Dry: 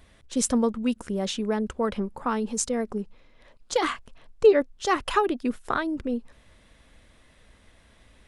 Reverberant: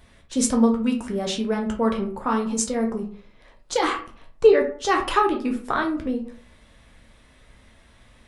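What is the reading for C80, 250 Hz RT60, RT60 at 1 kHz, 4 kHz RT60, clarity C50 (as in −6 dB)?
14.5 dB, 0.50 s, 0.45 s, 0.25 s, 9.5 dB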